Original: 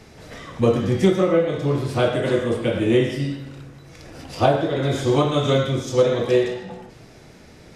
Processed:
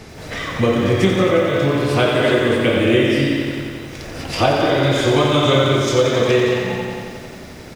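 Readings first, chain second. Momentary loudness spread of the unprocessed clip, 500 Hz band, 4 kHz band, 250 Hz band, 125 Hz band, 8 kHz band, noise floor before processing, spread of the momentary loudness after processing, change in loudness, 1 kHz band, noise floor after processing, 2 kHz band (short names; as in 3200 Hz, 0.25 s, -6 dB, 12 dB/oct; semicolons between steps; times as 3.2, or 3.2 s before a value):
18 LU, +3.5 dB, +9.0 dB, +4.5 dB, +3.5 dB, +7.0 dB, -46 dBFS, 15 LU, +4.0 dB, +5.5 dB, -36 dBFS, +10.0 dB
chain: compressor 2:1, threshold -28 dBFS, peak gain reduction 9.5 dB; dynamic EQ 2400 Hz, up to +7 dB, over -48 dBFS, Q 0.77; speakerphone echo 0.22 s, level -6 dB; lo-fi delay 89 ms, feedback 80%, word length 9-bit, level -7.5 dB; gain +8 dB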